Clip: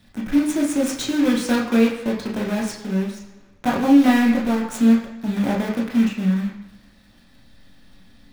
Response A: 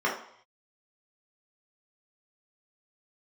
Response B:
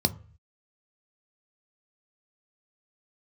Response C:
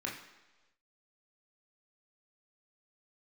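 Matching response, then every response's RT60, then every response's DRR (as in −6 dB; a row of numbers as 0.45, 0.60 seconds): C; 0.65 s, 0.45 s, non-exponential decay; −5.0, 9.5, −3.0 decibels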